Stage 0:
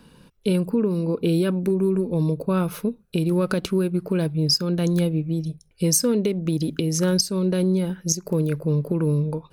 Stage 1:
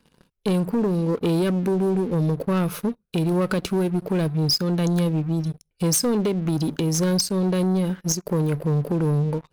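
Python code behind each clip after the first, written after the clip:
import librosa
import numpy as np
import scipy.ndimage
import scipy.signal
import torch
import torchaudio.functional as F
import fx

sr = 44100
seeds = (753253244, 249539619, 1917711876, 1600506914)

y = fx.leveller(x, sr, passes=3)
y = F.gain(torch.from_numpy(y), -8.5).numpy()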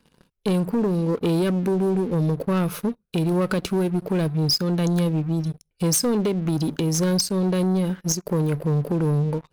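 y = x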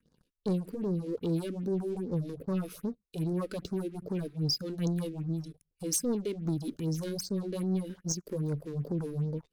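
y = fx.rotary(x, sr, hz=5.5)
y = fx.phaser_stages(y, sr, stages=4, low_hz=120.0, high_hz=2900.0, hz=2.5, feedback_pct=25)
y = F.gain(torch.from_numpy(y), -8.0).numpy()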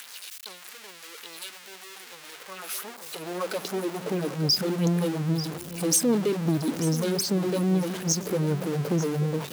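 y = x + 0.5 * 10.0 ** (-35.0 / 20.0) * np.sign(x)
y = y + 10.0 ** (-14.5 / 20.0) * np.pad(y, (int(890 * sr / 1000.0), 0))[:len(y)]
y = fx.filter_sweep_highpass(y, sr, from_hz=1900.0, to_hz=160.0, start_s=2.11, end_s=4.63, q=0.72)
y = F.gain(torch.from_numpy(y), 6.5).numpy()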